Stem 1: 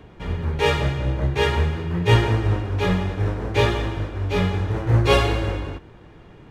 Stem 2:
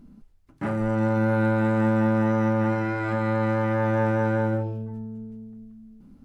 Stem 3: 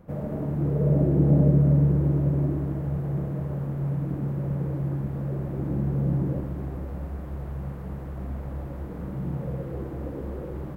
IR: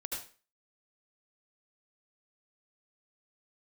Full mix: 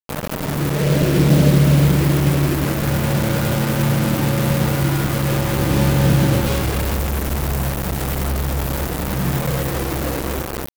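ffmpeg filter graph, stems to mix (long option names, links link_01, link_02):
-filter_complex "[0:a]alimiter=limit=-15.5dB:level=0:latency=1:release=320,adelay=1400,volume=-9dB,afade=type=in:start_time=5.56:duration=0.29:silence=0.298538[link_01];[1:a]adelay=2000,volume=-8dB[link_02];[2:a]dynaudnorm=framelen=460:gausssize=5:maxgain=5dB,crystalizer=i=5:c=0,volume=-5dB,asplit=2[link_03][link_04];[link_04]volume=-4.5dB[link_05];[3:a]atrim=start_sample=2205[link_06];[link_05][link_06]afir=irnorm=-1:irlink=0[link_07];[link_01][link_02][link_03][link_07]amix=inputs=4:normalize=0,acontrast=47,acrusher=bits=3:mix=0:aa=0.000001"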